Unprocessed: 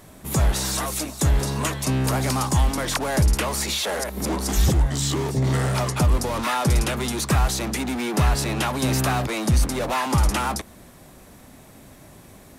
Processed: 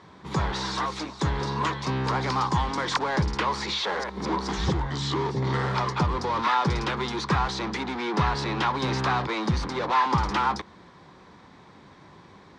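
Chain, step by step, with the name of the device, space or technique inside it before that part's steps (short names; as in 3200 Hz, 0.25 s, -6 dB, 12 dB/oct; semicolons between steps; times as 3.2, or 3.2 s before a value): 2.59–3.03 dynamic EQ 7800 Hz, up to +7 dB, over -43 dBFS, Q 1.4; guitar cabinet (speaker cabinet 110–4600 Hz, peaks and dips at 120 Hz -6 dB, 250 Hz -8 dB, 630 Hz -10 dB, 990 Hz +7 dB, 2700 Hz -6 dB)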